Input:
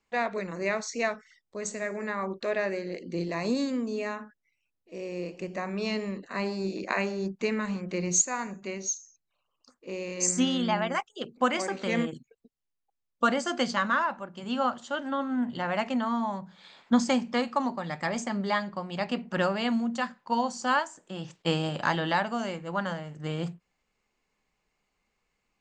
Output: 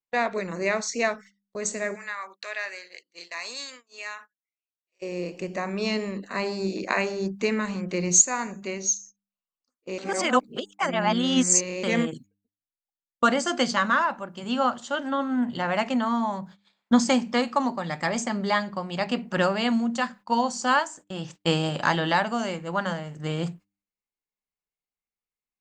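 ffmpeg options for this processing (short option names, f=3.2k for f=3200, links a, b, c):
-filter_complex "[0:a]asplit=3[a][b][c];[a]afade=t=out:st=1.94:d=0.02[d];[b]highpass=1.4k,afade=t=in:st=1.94:d=0.02,afade=t=out:st=5.01:d=0.02[e];[c]afade=t=in:st=5.01:d=0.02[f];[d][e][f]amix=inputs=3:normalize=0,asplit=3[g][h][i];[g]atrim=end=9.982[j];[h]atrim=start=9.978:end=11.832,asetpts=PTS-STARTPTS,areverse[k];[i]atrim=start=11.828[l];[j][k]acrossfade=d=0.004:c1=hsin:c2=hsin[m];[m][l]acrossfade=d=0.004:c1=hsin:c2=hsin,agate=range=-26dB:threshold=-48dB:ratio=16:detection=peak,highshelf=f=6.6k:g=6,bandreject=f=99.77:t=h:w=4,bandreject=f=199.54:t=h:w=4,bandreject=f=299.31:t=h:w=4,volume=3.5dB"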